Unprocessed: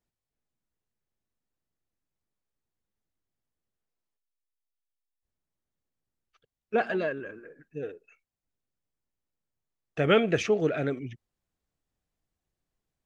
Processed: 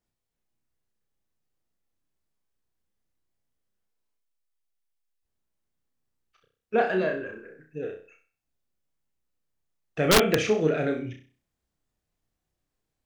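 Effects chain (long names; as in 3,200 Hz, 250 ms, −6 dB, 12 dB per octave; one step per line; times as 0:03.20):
flutter between parallel walls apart 5.5 metres, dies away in 0.4 s
wrap-around overflow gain 11.5 dB
level +1 dB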